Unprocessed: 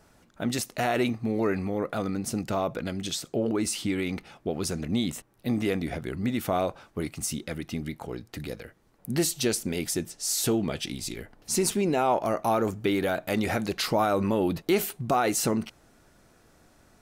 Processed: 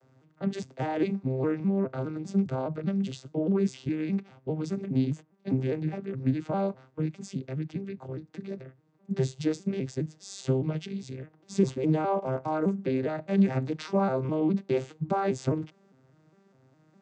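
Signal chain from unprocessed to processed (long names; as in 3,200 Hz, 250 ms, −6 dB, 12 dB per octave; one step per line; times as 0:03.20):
vocoder with an arpeggio as carrier minor triad, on C3, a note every 204 ms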